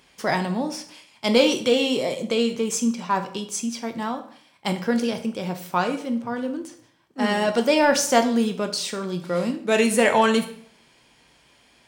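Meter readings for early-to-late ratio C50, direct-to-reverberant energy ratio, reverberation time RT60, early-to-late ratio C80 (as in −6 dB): 11.5 dB, 6.5 dB, 0.55 s, 15.0 dB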